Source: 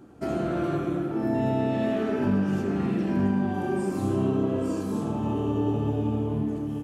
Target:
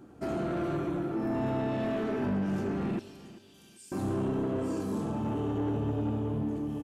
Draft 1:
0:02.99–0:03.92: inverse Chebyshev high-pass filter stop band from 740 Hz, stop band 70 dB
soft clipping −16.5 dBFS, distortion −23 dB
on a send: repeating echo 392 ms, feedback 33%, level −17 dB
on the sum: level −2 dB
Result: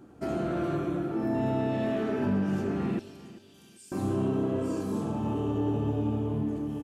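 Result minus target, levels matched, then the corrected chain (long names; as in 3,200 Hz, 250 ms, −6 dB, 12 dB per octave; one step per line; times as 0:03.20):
soft clipping: distortion −9 dB
0:02.99–0:03.92: inverse Chebyshev high-pass filter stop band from 740 Hz, stop band 70 dB
soft clipping −23.5 dBFS, distortion −14 dB
on a send: repeating echo 392 ms, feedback 33%, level −17 dB
on the sum: level −2 dB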